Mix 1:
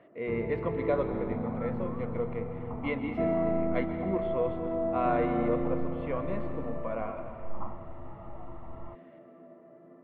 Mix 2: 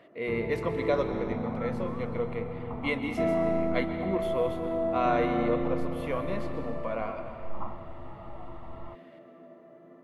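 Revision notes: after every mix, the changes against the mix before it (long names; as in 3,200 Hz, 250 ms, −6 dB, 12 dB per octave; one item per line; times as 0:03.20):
master: remove high-frequency loss of the air 490 metres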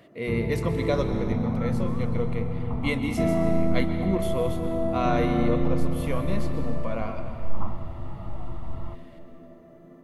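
second sound: send on
master: add bass and treble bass +11 dB, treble +13 dB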